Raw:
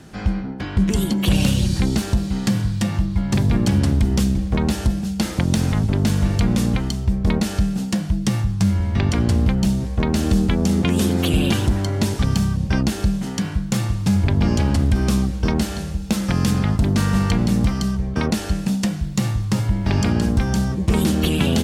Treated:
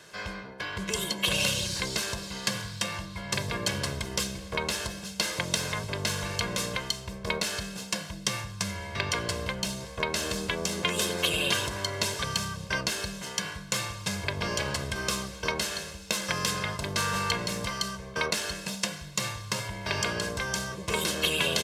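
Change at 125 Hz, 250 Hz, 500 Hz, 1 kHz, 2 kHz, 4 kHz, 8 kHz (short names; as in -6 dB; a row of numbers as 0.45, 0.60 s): -18.0, -18.5, -6.0, -3.5, +1.0, +1.0, 0.0 dB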